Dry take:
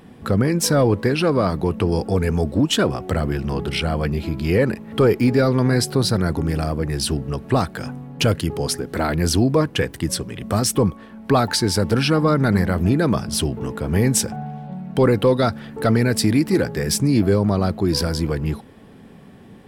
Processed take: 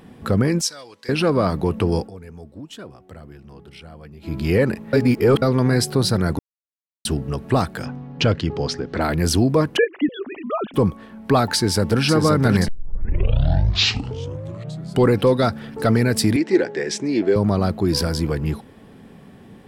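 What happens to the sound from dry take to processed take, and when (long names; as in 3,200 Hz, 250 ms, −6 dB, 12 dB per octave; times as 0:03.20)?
0:00.61–0:01.09: resonant band-pass 5,700 Hz, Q 1.4
0:01.97–0:04.35: duck −19 dB, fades 0.14 s
0:04.93–0:05.42: reverse
0:06.39–0:07.05: silence
0:07.85–0:09.01: low-pass filter 5,600 Hz 24 dB per octave
0:09.77–0:10.74: three sine waves on the formant tracks
0:11.55–0:12.03: delay throw 530 ms, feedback 65%, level −5.5 dB
0:12.68: tape start 2.45 s
0:16.36–0:17.36: loudspeaker in its box 340–6,500 Hz, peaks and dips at 360 Hz +7 dB, 1,200 Hz −8 dB, 1,900 Hz +4 dB, 4,800 Hz −6 dB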